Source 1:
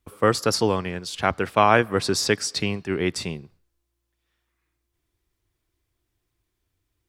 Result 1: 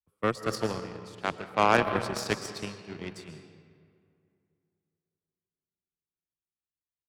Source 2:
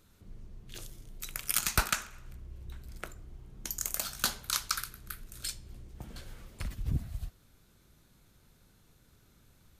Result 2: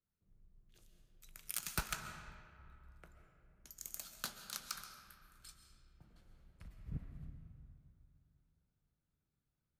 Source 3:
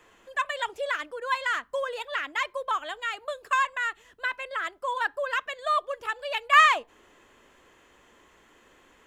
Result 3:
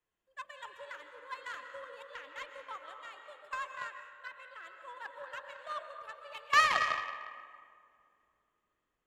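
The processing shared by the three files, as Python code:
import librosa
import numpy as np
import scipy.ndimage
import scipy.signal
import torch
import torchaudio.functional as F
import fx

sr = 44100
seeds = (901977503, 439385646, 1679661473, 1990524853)

y = fx.peak_eq(x, sr, hz=160.0, db=7.0, octaves=0.41)
y = fx.rev_freeverb(y, sr, rt60_s=3.5, hf_ratio=0.55, predelay_ms=95, drr_db=2.0)
y = fx.cheby_harmonics(y, sr, harmonics=(7,), levels_db=(-20,), full_scale_db=-0.5)
y = fx.band_widen(y, sr, depth_pct=40)
y = y * 10.0 ** (-8.0 / 20.0)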